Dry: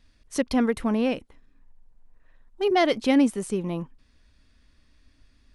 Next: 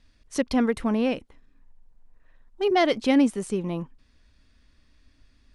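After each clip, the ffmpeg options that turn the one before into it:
-af "lowpass=10000"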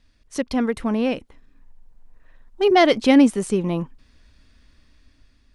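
-af "dynaudnorm=f=530:g=5:m=2.51"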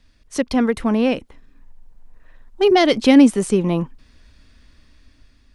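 -filter_complex "[0:a]acrossover=split=330|3000[s0][s1][s2];[s1]acompressor=threshold=0.126:ratio=6[s3];[s0][s3][s2]amix=inputs=3:normalize=0,volume=1.58"

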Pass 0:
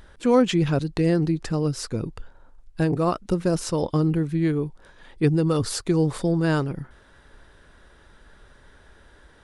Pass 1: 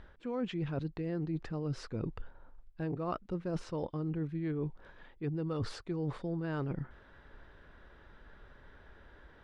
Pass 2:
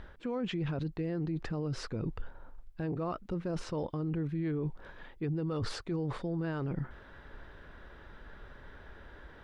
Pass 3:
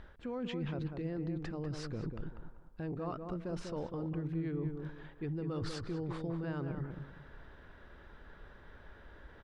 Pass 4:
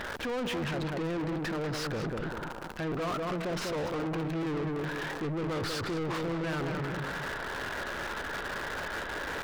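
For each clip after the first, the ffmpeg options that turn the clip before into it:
-af "lowpass=2900,areverse,acompressor=threshold=0.0398:ratio=12,areverse,volume=0.631"
-af "alimiter=level_in=2.66:limit=0.0631:level=0:latency=1:release=22,volume=0.376,volume=1.88"
-filter_complex "[0:a]asplit=2[s0][s1];[s1]adelay=195,lowpass=f=1400:p=1,volume=0.562,asplit=2[s2][s3];[s3]adelay=195,lowpass=f=1400:p=1,volume=0.31,asplit=2[s4][s5];[s5]adelay=195,lowpass=f=1400:p=1,volume=0.31,asplit=2[s6][s7];[s7]adelay=195,lowpass=f=1400:p=1,volume=0.31[s8];[s0][s2][s4][s6][s8]amix=inputs=5:normalize=0,volume=0.596"
-filter_complex "[0:a]aeval=exprs='val(0)+0.5*0.00501*sgn(val(0))':c=same,asplit=2[s0][s1];[s1]highpass=f=720:p=1,volume=35.5,asoftclip=type=tanh:threshold=0.0473[s2];[s0][s2]amix=inputs=2:normalize=0,lowpass=f=4300:p=1,volume=0.501"

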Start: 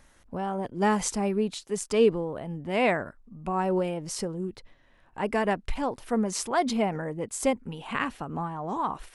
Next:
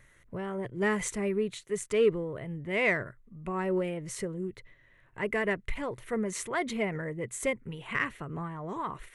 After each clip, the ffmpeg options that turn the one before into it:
-filter_complex "[0:a]equalizer=f=125:t=o:w=0.33:g=11,equalizer=f=250:t=o:w=0.33:g=-7,equalizer=f=400:t=o:w=0.33:g=4,equalizer=f=800:t=o:w=0.33:g=-11,equalizer=f=2000:t=o:w=0.33:g=11,equalizer=f=5000:t=o:w=0.33:g=-11,asplit=2[s0][s1];[s1]asoftclip=type=tanh:threshold=0.0794,volume=0.282[s2];[s0][s2]amix=inputs=2:normalize=0,volume=0.531"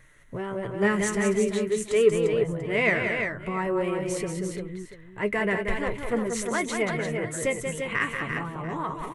-af "flanger=delay=6.2:depth=4.7:regen=49:speed=0.45:shape=triangular,aecho=1:1:184|325|347|689:0.501|0.141|0.501|0.141,volume=2.37"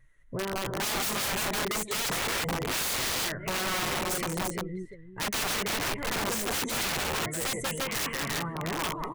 -af "afftdn=nr=15:nf=-45,aeval=exprs='(mod(17.8*val(0)+1,2)-1)/17.8':c=same"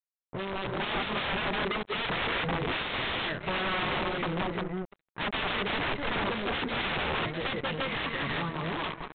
-af "dynaudnorm=f=110:g=11:m=1.88,aresample=8000,acrusher=bits=4:mix=0:aa=0.5,aresample=44100,volume=0.596"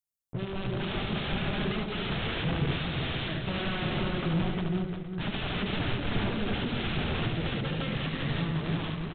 -filter_complex "[0:a]equalizer=f=125:t=o:w=1:g=4,equalizer=f=250:t=o:w=1:g=-3,equalizer=f=500:t=o:w=1:g=-7,equalizer=f=1000:t=o:w=1:g=-11,equalizer=f=2000:t=o:w=1:g=-9,equalizer=f=4000:t=o:w=1:g=-6,asplit=2[s0][s1];[s1]aecho=0:1:74|352|547|815:0.596|0.501|0.158|0.141[s2];[s0][s2]amix=inputs=2:normalize=0,volume=1.68"

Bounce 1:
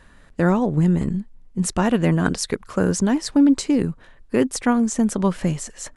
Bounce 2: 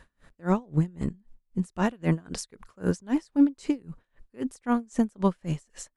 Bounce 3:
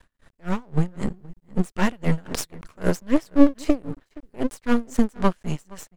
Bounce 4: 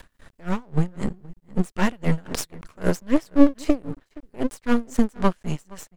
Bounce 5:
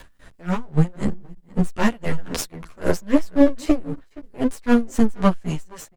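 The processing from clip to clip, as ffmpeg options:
-af "aeval=exprs='val(0)*pow(10,-31*(0.5-0.5*cos(2*PI*3.8*n/s))/20)':c=same,volume=0.75"
-filter_complex "[0:a]dynaudnorm=f=260:g=5:m=3.76,asplit=2[s0][s1];[s1]adelay=472.3,volume=0.0794,highshelf=f=4000:g=-10.6[s2];[s0][s2]amix=inputs=2:normalize=0,aeval=exprs='max(val(0),0)':c=same,volume=1.26"
-af "acompressor=mode=upward:threshold=0.0126:ratio=2.5"
-filter_complex "[0:a]asplit=2[s0][s1];[s1]adelay=11,afreqshift=-1[s2];[s0][s2]amix=inputs=2:normalize=1,volume=1.88"

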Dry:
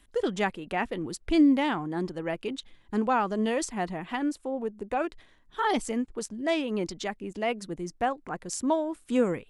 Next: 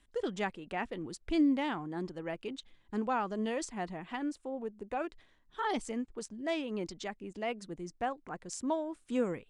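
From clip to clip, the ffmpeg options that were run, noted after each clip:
-af "lowpass=f=9400:w=0.5412,lowpass=f=9400:w=1.3066,volume=0.447"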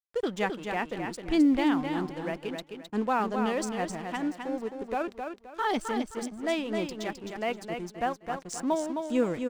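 -filter_complex "[0:a]aeval=exprs='sgn(val(0))*max(abs(val(0))-0.00224,0)':c=same,asplit=2[s0][s1];[s1]aecho=0:1:262|524|786|1048:0.501|0.145|0.0421|0.0122[s2];[s0][s2]amix=inputs=2:normalize=0,volume=1.88"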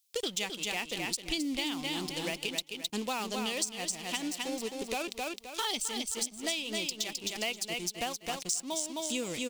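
-af "aexciter=amount=9.9:drive=4.4:freq=2400,acompressor=threshold=0.0282:ratio=6"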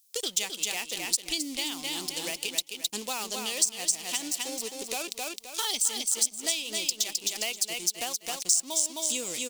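-af "bass=f=250:g=-8,treble=f=4000:g=11,volume=0.891"

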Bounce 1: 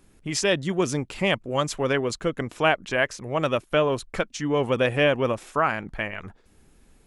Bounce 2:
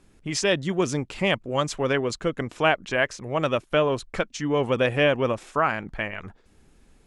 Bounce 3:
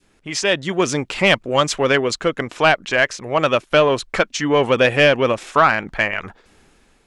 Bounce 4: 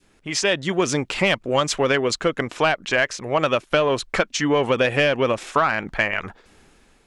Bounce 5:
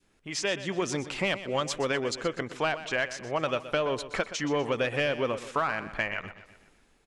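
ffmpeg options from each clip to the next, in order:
-af "lowpass=8900"
-filter_complex "[0:a]dynaudnorm=f=200:g=7:m=2.82,adynamicequalizer=threshold=0.0355:dfrequency=970:dqfactor=0.88:tfrequency=970:tqfactor=0.88:attack=5:release=100:ratio=0.375:range=2.5:mode=cutabove:tftype=bell,asplit=2[s0][s1];[s1]highpass=f=720:p=1,volume=3.16,asoftclip=type=tanh:threshold=0.794[s2];[s0][s2]amix=inputs=2:normalize=0,lowpass=f=5500:p=1,volume=0.501"
-af "acompressor=threshold=0.178:ratio=6"
-af "aecho=1:1:124|248|372|496|620:0.211|0.101|0.0487|0.0234|0.0112,volume=0.355"

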